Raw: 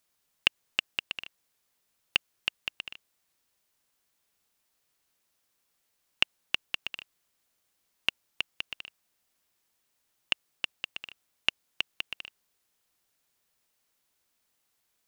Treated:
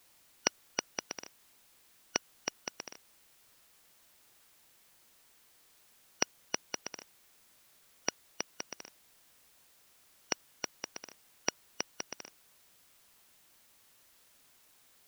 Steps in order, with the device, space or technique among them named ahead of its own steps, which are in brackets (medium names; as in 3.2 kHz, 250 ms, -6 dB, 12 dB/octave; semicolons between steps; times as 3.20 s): split-band scrambled radio (four frequency bands reordered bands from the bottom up 3142; band-pass 360–3300 Hz; white noise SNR 19 dB); trim +3 dB